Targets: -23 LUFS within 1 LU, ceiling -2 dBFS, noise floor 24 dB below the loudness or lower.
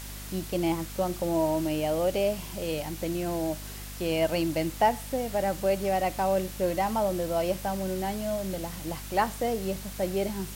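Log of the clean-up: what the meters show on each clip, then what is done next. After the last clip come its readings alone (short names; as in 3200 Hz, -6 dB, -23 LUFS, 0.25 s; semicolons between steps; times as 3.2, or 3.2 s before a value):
hum 50 Hz; harmonics up to 250 Hz; hum level -39 dBFS; noise floor -40 dBFS; noise floor target -53 dBFS; loudness -29.0 LUFS; peak -11.5 dBFS; loudness target -23.0 LUFS
-> de-hum 50 Hz, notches 5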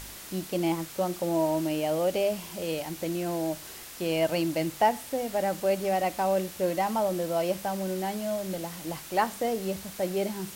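hum none; noise floor -44 dBFS; noise floor target -53 dBFS
-> noise print and reduce 9 dB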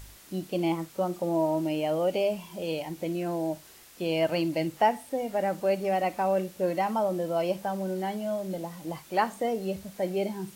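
noise floor -52 dBFS; noise floor target -54 dBFS
-> noise print and reduce 6 dB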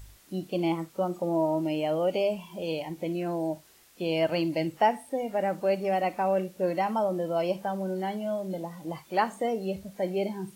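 noise floor -57 dBFS; loudness -29.5 LUFS; peak -12.0 dBFS; loudness target -23.0 LUFS
-> gain +6.5 dB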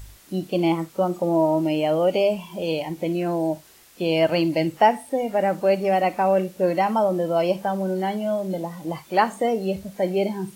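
loudness -23.0 LUFS; peak -5.5 dBFS; noise floor -50 dBFS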